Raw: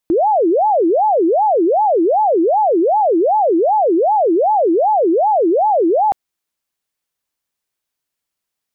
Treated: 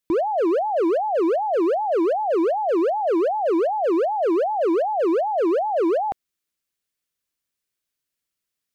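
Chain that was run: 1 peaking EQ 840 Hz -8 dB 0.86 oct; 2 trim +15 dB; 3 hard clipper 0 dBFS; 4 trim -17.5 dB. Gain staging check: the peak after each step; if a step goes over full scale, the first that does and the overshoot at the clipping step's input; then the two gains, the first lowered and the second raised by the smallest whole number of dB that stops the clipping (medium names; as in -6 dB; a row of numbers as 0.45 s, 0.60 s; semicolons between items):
-11.0 dBFS, +4.0 dBFS, 0.0 dBFS, -17.5 dBFS; step 2, 4.0 dB; step 2 +11 dB, step 4 -13.5 dB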